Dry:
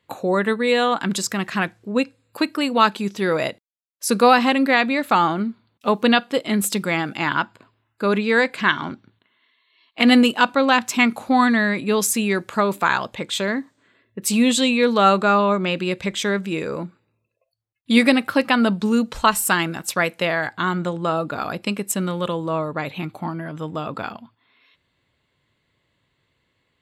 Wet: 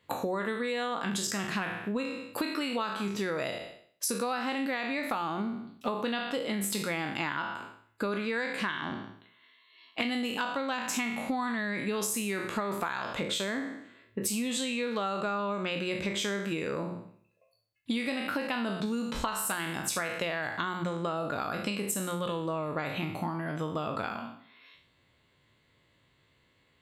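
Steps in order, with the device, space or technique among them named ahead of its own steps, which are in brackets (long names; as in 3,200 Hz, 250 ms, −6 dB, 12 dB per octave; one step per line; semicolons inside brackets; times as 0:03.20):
peak hold with a decay on every bin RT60 0.54 s
hum removal 179.6 Hz, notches 2
serial compression, leveller first (downward compressor 2.5 to 1, threshold −19 dBFS, peak gain reduction 7.5 dB; downward compressor 5 to 1, threshold −30 dBFS, peak gain reduction 13.5 dB)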